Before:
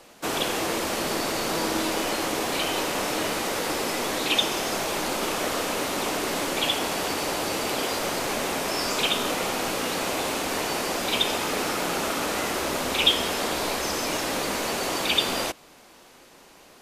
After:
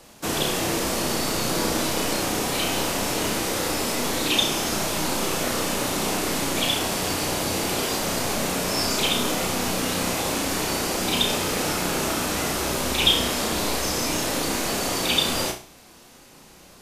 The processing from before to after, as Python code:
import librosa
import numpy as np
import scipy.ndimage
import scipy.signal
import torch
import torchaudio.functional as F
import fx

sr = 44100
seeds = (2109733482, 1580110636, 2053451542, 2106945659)

y = fx.bass_treble(x, sr, bass_db=9, treble_db=5)
y = fx.room_flutter(y, sr, wall_m=5.6, rt60_s=0.36)
y = F.gain(torch.from_numpy(y), -1.5).numpy()